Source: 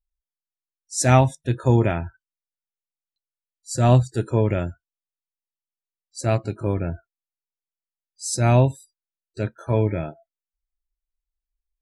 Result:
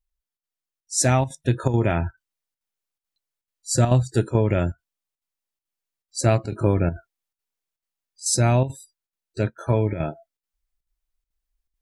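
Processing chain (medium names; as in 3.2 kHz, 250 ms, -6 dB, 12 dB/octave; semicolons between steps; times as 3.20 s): compression, threshold -20 dBFS, peak gain reduction 10 dB; square tremolo 2.3 Hz, depth 60%, duty 85%; gain riding 2 s; trim +6.5 dB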